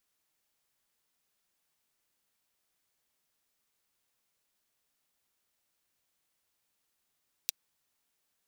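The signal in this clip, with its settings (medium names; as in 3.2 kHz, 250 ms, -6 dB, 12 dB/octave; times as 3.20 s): closed hi-hat, high-pass 3.6 kHz, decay 0.02 s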